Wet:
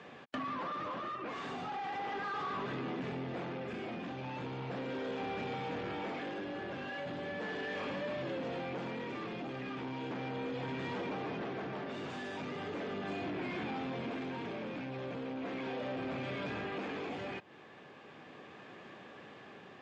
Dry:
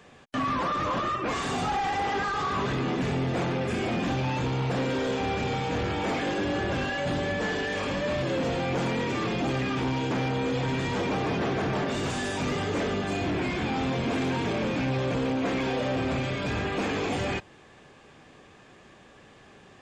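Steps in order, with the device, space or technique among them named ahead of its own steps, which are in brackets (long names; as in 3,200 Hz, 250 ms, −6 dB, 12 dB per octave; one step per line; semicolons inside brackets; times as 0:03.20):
AM radio (band-pass filter 160–3,600 Hz; downward compressor, threshold −37 dBFS, peak gain reduction 12 dB; soft clipping −31 dBFS, distortion −23 dB; amplitude tremolo 0.37 Hz, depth 30%)
level +2 dB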